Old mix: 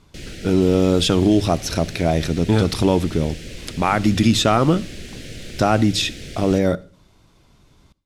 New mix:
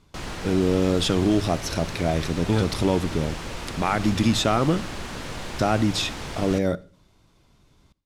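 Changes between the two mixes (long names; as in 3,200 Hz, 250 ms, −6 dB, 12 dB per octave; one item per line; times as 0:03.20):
speech −5.0 dB
background: remove Butterworth band-reject 1,000 Hz, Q 0.7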